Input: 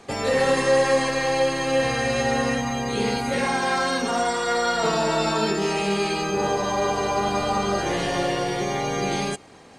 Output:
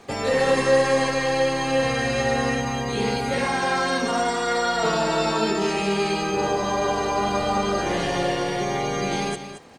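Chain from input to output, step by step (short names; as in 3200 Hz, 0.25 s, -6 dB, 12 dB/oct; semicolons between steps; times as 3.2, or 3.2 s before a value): high shelf 8900 Hz -4.5 dB; crackle 120/s -47 dBFS; on a send: echo 0.224 s -10.5 dB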